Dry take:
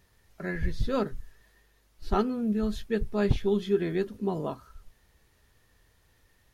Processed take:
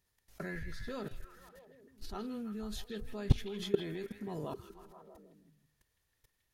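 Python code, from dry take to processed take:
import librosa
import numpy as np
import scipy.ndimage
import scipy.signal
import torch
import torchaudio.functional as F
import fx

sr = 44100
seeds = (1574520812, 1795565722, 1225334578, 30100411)

p1 = fx.high_shelf(x, sr, hz=3600.0, db=8.5)
p2 = fx.level_steps(p1, sr, step_db=20)
y = p2 + fx.echo_stepped(p2, sr, ms=160, hz=2700.0, octaves=-0.7, feedback_pct=70, wet_db=-5.0, dry=0)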